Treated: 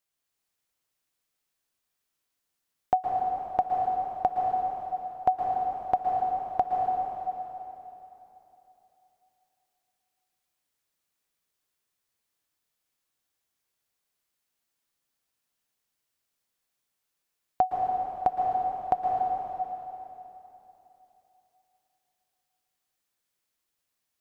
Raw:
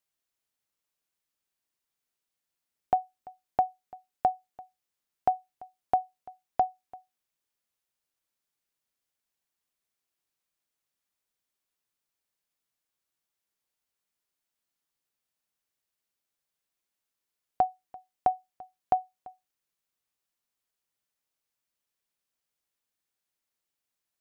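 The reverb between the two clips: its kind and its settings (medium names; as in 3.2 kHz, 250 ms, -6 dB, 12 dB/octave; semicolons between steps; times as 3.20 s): plate-style reverb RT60 3.3 s, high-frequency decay 0.95×, pre-delay 105 ms, DRR -1 dB; trim +1 dB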